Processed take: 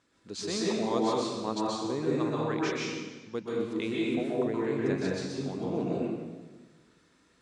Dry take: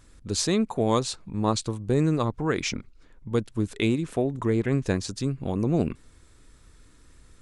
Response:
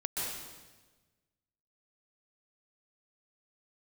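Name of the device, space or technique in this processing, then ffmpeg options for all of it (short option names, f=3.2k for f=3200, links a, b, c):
supermarket ceiling speaker: -filter_complex "[0:a]highpass=220,lowpass=5.5k[a];[1:a]atrim=start_sample=2205[b];[a][b]afir=irnorm=-1:irlink=0,volume=-7.5dB"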